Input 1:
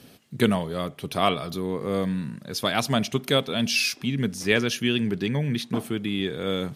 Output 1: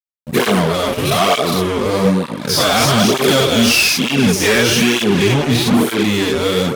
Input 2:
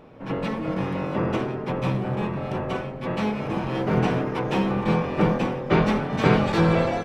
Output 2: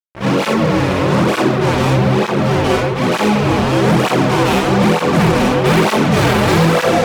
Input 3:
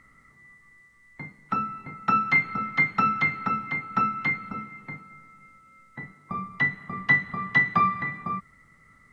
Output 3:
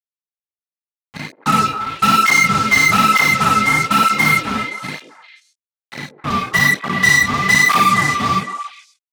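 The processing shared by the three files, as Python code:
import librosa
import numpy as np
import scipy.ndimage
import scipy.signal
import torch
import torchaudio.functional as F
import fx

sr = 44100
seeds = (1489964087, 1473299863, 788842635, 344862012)

p1 = fx.spec_dilate(x, sr, span_ms=120)
p2 = fx.fuzz(p1, sr, gain_db=24.0, gate_db=-33.0)
p3 = p2 + fx.echo_stepped(p2, sr, ms=132, hz=410.0, octaves=1.4, feedback_pct=70, wet_db=-5.0, dry=0)
p4 = fx.flanger_cancel(p3, sr, hz=1.1, depth_ms=6.6)
y = F.gain(torch.from_numpy(p4), 5.5).numpy()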